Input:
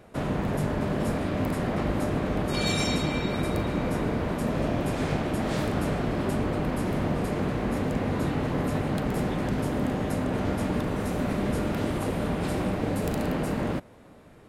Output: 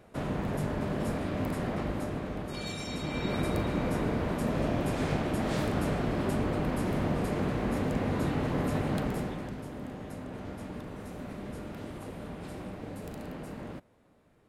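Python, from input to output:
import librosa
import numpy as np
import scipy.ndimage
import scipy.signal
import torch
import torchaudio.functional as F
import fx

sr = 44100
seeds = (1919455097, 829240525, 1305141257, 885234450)

y = fx.gain(x, sr, db=fx.line((1.67, -4.5), (2.83, -12.0), (3.31, -2.5), (9.01, -2.5), (9.61, -13.0)))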